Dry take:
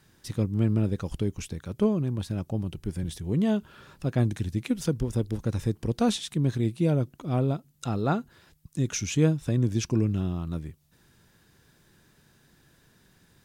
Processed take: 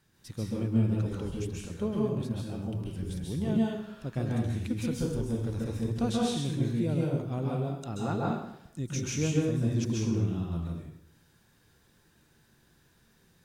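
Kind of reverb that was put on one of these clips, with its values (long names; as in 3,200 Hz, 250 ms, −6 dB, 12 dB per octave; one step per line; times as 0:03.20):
dense smooth reverb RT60 0.76 s, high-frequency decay 0.9×, pre-delay 120 ms, DRR −4 dB
level −8.5 dB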